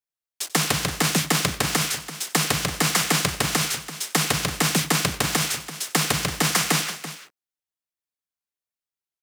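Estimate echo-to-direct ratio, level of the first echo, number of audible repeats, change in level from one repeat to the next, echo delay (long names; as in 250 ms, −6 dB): −12.0 dB, −19.0 dB, 2, repeats not evenly spaced, 92 ms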